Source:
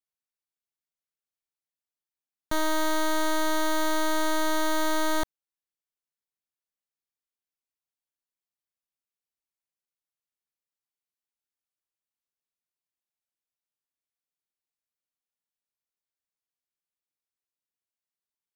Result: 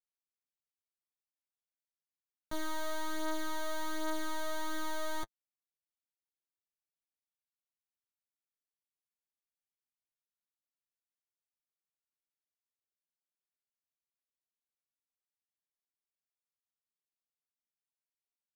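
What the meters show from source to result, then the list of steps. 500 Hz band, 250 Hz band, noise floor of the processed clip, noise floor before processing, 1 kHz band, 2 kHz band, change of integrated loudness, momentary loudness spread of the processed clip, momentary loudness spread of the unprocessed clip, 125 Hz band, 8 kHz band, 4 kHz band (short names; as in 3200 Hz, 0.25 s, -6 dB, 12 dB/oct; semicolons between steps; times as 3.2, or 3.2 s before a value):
-11.5 dB, -12.0 dB, under -85 dBFS, under -85 dBFS, -11.5 dB, -11.5 dB, -11.5 dB, 4 LU, 3 LU, -8.5 dB, -11.5 dB, -11.5 dB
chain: flange 0.21 Hz, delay 6.9 ms, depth 9.5 ms, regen +22%; gain -8 dB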